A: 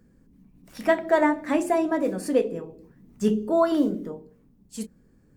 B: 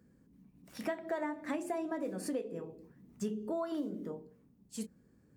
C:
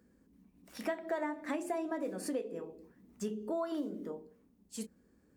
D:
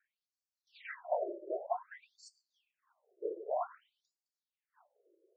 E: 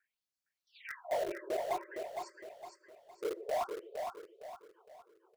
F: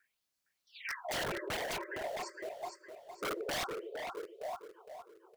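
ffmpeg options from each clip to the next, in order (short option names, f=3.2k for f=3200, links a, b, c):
-af "highpass=70,acompressor=threshold=-28dB:ratio=6,volume=-5.5dB"
-af "equalizer=f=130:w=2.1:g=-14,volume=1dB"
-af "afftfilt=real='hypot(re,im)*cos(2*PI*random(0))':imag='hypot(re,im)*sin(2*PI*random(1))':win_size=512:overlap=0.75,aemphasis=mode=reproduction:type=75fm,afftfilt=real='re*between(b*sr/1024,440*pow(6200/440,0.5+0.5*sin(2*PI*0.53*pts/sr))/1.41,440*pow(6200/440,0.5+0.5*sin(2*PI*0.53*pts/sr))*1.41)':imag='im*between(b*sr/1024,440*pow(6200/440,0.5+0.5*sin(2*PI*0.53*pts/sr))/1.41,440*pow(6200/440,0.5+0.5*sin(2*PI*0.53*pts/sr))*1.41)':win_size=1024:overlap=0.75,volume=8.5dB"
-filter_complex "[0:a]asplit=2[a][b];[b]acrusher=bits=5:mix=0:aa=0.000001,volume=-5dB[c];[a][c]amix=inputs=2:normalize=0,asoftclip=type=tanh:threshold=-27.5dB,aecho=1:1:461|922|1383|1844|2305:0.531|0.202|0.0767|0.0291|0.0111"
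-af "aeval=exprs='0.0106*(abs(mod(val(0)/0.0106+3,4)-2)-1)':c=same,volume=7dB"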